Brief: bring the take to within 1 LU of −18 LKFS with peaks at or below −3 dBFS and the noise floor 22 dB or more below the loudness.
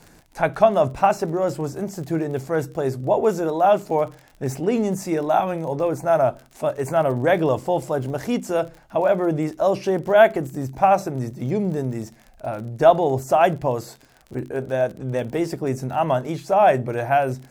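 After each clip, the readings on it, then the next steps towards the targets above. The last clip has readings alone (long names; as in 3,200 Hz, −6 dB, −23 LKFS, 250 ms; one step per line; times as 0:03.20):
crackle rate 38 per second; integrated loudness −21.5 LKFS; sample peak −2.5 dBFS; target loudness −18.0 LKFS
→ click removal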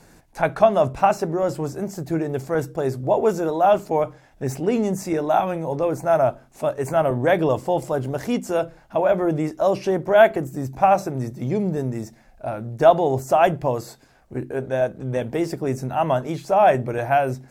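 crackle rate 0.17 per second; integrated loudness −21.5 LKFS; sample peak −2.5 dBFS; target loudness −18.0 LKFS
→ level +3.5 dB
brickwall limiter −3 dBFS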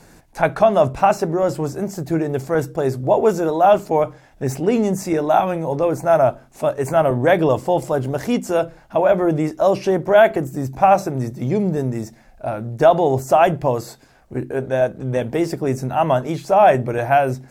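integrated loudness −18.5 LKFS; sample peak −3.0 dBFS; background noise floor −50 dBFS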